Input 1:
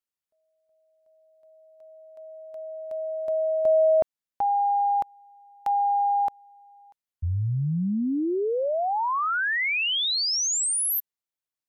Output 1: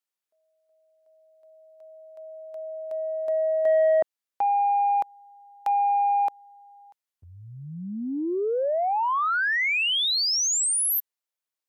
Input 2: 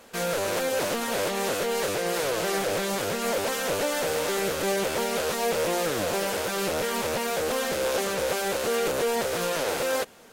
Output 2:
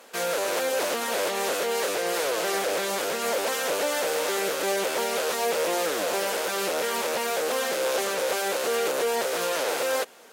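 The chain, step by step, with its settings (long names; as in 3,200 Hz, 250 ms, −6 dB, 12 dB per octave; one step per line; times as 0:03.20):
high-pass filter 340 Hz 12 dB per octave
in parallel at −8.5 dB: sine wavefolder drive 4 dB, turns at −14 dBFS
on the sum: level −4 dB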